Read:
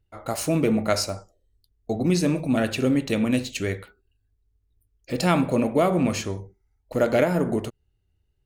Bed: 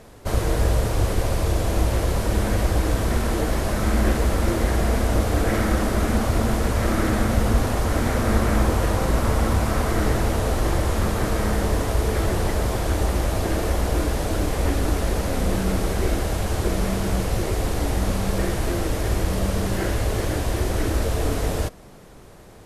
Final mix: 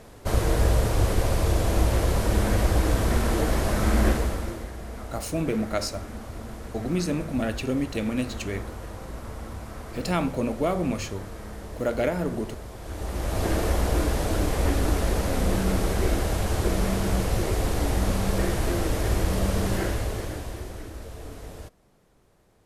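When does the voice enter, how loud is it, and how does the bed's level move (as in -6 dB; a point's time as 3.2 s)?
4.85 s, -5.0 dB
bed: 4.08 s -1 dB
4.72 s -16.5 dB
12.76 s -16.5 dB
13.45 s -1.5 dB
19.75 s -1.5 dB
20.91 s -16.5 dB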